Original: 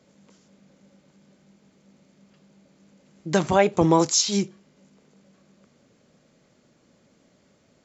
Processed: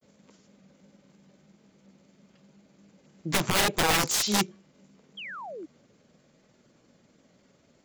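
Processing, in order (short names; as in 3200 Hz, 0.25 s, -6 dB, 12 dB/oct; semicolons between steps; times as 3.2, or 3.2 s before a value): wrapped overs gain 16.5 dB; grains 0.1 s, grains 20/s, spray 18 ms, pitch spread up and down by 0 st; painted sound fall, 5.17–5.66, 290–3400 Hz -39 dBFS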